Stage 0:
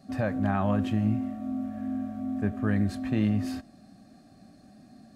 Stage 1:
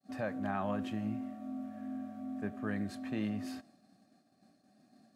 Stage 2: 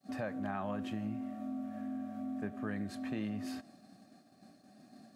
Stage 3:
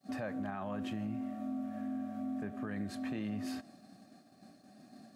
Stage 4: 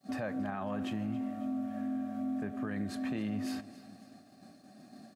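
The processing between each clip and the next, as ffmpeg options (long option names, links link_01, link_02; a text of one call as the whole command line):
ffmpeg -i in.wav -af "agate=range=-33dB:threshold=-48dB:ratio=3:detection=peak,highpass=100,lowshelf=frequency=150:gain=-11.5,volume=-6dB" out.wav
ffmpeg -i in.wav -af "acompressor=threshold=-49dB:ratio=2,volume=7dB" out.wav
ffmpeg -i in.wav -af "alimiter=level_in=7.5dB:limit=-24dB:level=0:latency=1:release=29,volume=-7.5dB,volume=1.5dB" out.wav
ffmpeg -i in.wav -af "aecho=1:1:275|550|825|1100:0.126|0.0642|0.0327|0.0167,volume=2.5dB" out.wav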